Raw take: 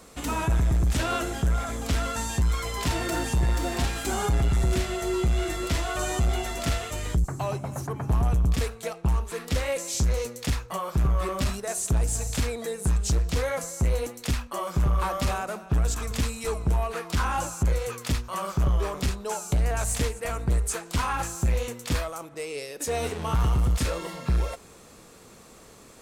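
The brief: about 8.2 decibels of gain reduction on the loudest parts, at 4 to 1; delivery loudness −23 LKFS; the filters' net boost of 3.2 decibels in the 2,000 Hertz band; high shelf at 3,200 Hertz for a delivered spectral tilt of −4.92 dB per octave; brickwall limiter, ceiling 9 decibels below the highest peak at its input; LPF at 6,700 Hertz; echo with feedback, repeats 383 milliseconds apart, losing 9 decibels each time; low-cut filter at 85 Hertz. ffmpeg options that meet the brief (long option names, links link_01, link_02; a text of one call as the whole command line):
ffmpeg -i in.wav -af "highpass=85,lowpass=6700,equalizer=frequency=2000:width_type=o:gain=7,highshelf=frequency=3200:gain=-8.5,acompressor=threshold=-32dB:ratio=4,alimiter=level_in=5dB:limit=-24dB:level=0:latency=1,volume=-5dB,aecho=1:1:383|766|1149|1532:0.355|0.124|0.0435|0.0152,volume=15dB" out.wav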